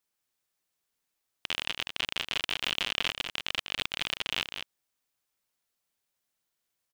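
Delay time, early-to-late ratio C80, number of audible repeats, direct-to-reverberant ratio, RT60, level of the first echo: 197 ms, no reverb audible, 1, no reverb audible, no reverb audible, −7.0 dB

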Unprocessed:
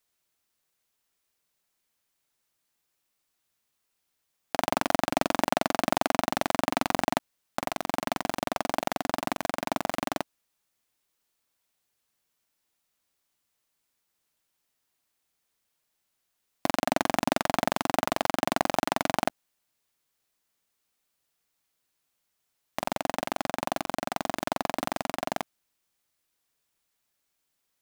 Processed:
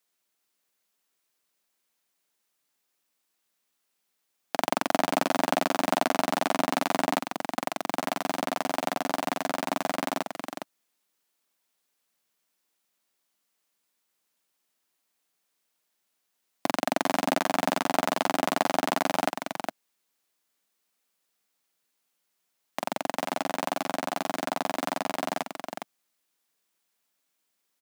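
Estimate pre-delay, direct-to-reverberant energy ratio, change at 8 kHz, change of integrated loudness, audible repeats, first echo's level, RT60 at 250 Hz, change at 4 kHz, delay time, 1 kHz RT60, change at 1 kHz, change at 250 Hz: no reverb audible, no reverb audible, +1.0 dB, +0.5 dB, 1, −6.0 dB, no reverb audible, +1.0 dB, 411 ms, no reverb audible, +1.0 dB, +1.0 dB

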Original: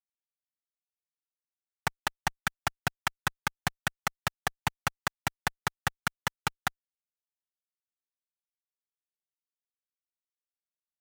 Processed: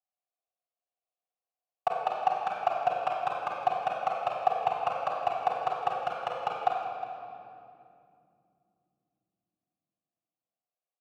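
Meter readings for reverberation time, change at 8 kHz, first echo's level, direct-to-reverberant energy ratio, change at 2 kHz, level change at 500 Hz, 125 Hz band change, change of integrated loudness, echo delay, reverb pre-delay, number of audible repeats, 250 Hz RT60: 2.7 s, below −20 dB, −7.5 dB, −1.5 dB, −8.5 dB, +12.5 dB, −14.5 dB, +3.0 dB, 50 ms, 6 ms, 2, 5.1 s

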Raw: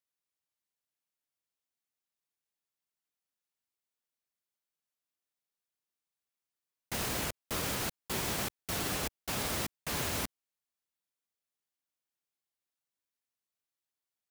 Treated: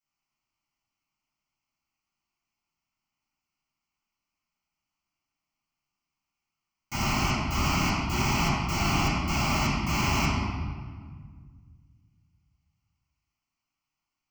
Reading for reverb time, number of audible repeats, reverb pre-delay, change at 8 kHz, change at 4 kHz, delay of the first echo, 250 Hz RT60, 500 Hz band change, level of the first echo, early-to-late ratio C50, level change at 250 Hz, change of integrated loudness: 1.7 s, no echo audible, 4 ms, +2.0 dB, +6.5 dB, no echo audible, 2.5 s, +4.0 dB, no echo audible, −2.5 dB, +12.5 dB, +7.5 dB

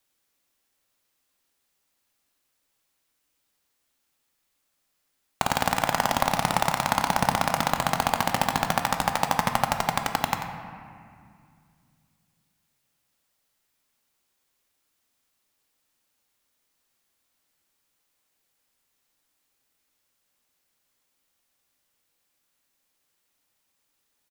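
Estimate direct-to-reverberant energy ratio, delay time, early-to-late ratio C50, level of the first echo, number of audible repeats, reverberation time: 4.0 dB, 90 ms, 5.0 dB, −10.0 dB, 1, 2.2 s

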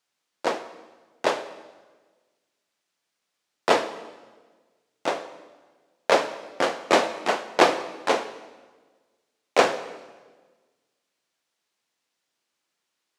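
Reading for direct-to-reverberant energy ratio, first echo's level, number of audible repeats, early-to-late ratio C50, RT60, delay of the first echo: 10.5 dB, no echo audible, no echo audible, 13.0 dB, 1.4 s, no echo audible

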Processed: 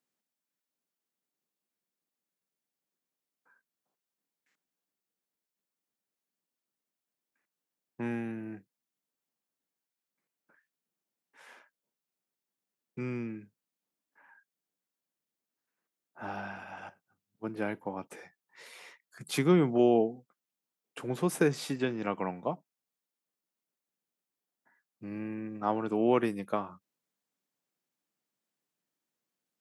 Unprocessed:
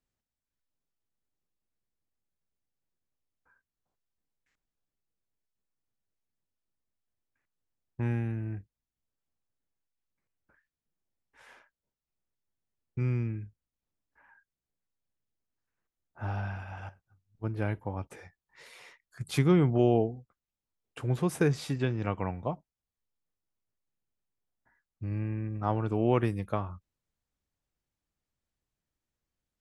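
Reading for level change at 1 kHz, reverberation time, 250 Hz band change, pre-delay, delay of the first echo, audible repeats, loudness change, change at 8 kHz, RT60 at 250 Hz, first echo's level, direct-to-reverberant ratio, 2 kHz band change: +1.0 dB, no reverb audible, 0.0 dB, no reverb audible, no echo audible, no echo audible, −1.0 dB, +2.5 dB, no reverb audible, no echo audible, no reverb audible, +1.0 dB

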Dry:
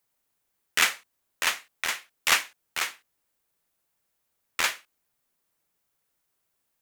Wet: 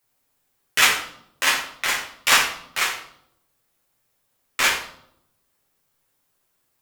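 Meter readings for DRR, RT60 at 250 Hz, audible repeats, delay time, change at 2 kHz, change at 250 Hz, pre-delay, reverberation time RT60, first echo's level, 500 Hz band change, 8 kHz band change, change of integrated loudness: −3.5 dB, 0.95 s, no echo audible, no echo audible, +6.5 dB, +8.5 dB, 8 ms, 0.70 s, no echo audible, +8.0 dB, +6.0 dB, +6.5 dB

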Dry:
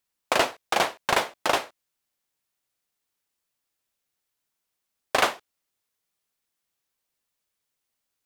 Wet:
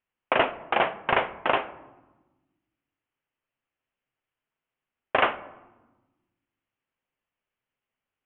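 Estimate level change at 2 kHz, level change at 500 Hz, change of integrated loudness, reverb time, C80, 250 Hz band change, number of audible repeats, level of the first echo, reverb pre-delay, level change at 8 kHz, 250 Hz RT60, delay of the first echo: 0.0 dB, +0.5 dB, −0.5 dB, 1.1 s, 18.5 dB, +0.5 dB, no echo audible, no echo audible, 8 ms, below −40 dB, 1.9 s, no echo audible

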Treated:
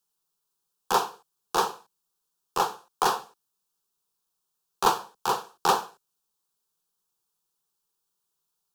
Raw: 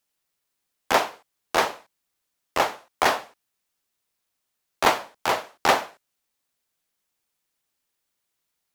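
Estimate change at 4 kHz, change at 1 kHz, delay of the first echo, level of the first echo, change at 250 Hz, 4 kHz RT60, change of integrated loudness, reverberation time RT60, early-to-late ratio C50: −4.0 dB, −1.5 dB, no echo audible, no echo audible, −4.0 dB, no reverb audible, −3.0 dB, no reverb audible, no reverb audible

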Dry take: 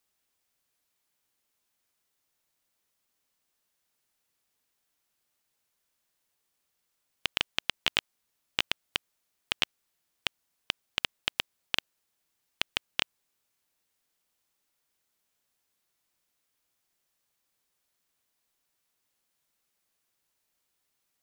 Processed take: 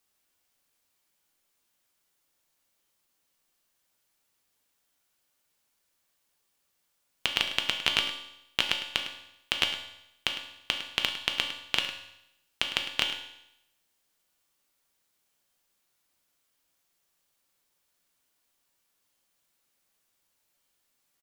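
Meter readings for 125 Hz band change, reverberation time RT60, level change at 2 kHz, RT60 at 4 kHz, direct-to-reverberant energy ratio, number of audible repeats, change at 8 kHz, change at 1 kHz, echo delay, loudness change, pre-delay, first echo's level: +2.5 dB, 0.80 s, +3.5 dB, 0.80 s, 3.0 dB, 1, +3.5 dB, +3.5 dB, 105 ms, +3.5 dB, 3 ms, −13.0 dB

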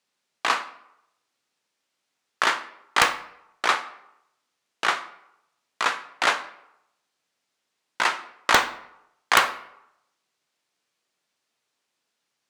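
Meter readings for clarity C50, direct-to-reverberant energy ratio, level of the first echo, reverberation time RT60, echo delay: 14.0 dB, 10.0 dB, no echo audible, 0.85 s, no echo audible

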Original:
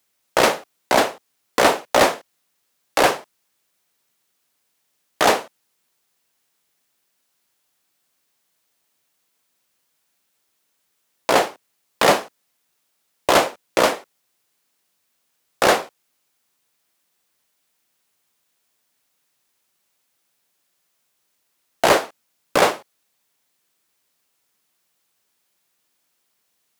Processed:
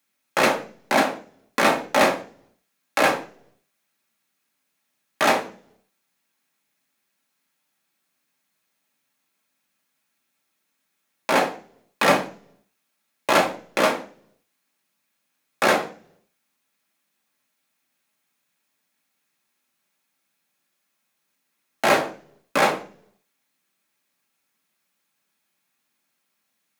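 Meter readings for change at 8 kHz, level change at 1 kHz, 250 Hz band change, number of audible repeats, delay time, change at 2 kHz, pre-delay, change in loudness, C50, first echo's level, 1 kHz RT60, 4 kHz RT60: −5.5 dB, −2.5 dB, 0.0 dB, no echo audible, no echo audible, −0.5 dB, 3 ms, −2.5 dB, 14.0 dB, no echo audible, 0.40 s, 0.50 s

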